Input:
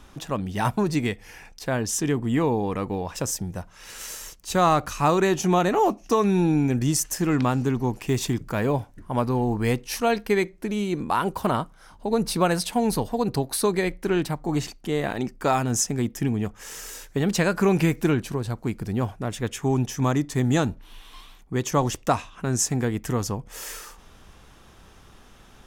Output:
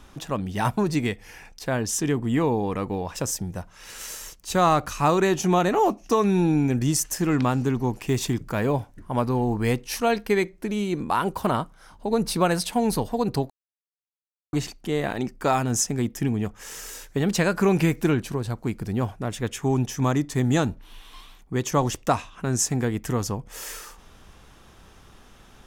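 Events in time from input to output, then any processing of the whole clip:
13.5–14.53 mute

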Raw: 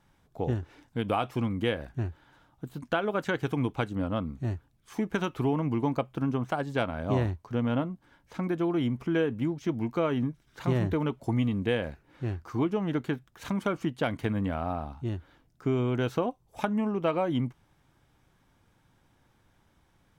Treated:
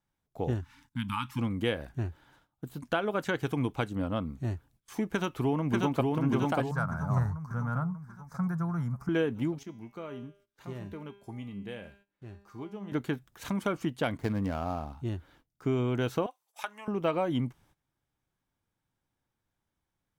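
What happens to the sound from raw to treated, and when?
0.61–1.39 spectral delete 280–830 Hz
5.07–6.06 echo throw 0.59 s, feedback 55%, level -1.5 dB
6.71–9.09 EQ curve 110 Hz 0 dB, 170 Hz +7 dB, 300 Hz -20 dB, 1400 Hz +5 dB, 3000 Hz -27 dB, 5100 Hz -2 dB
9.63–12.92 resonator 200 Hz, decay 0.68 s, mix 80%
14.17–14.93 median filter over 15 samples
16.26–16.88 HPF 1100 Hz
whole clip: gate -59 dBFS, range -17 dB; high shelf 6600 Hz +7 dB; gain -1.5 dB

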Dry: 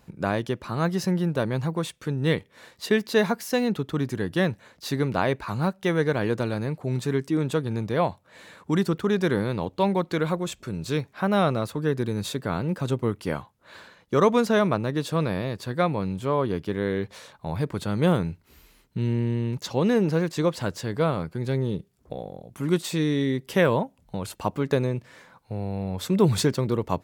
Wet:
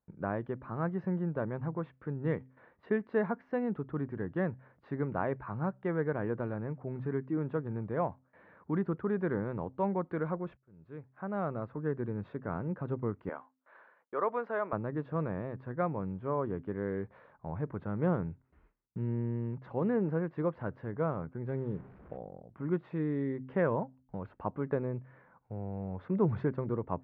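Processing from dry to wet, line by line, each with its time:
10.57–11.9 fade in
13.29–14.73 HPF 530 Hz
21.5–22.17 delta modulation 64 kbps, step -38.5 dBFS
whole clip: LPF 1700 Hz 24 dB/oct; gate with hold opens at -47 dBFS; de-hum 129.9 Hz, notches 2; gain -8.5 dB

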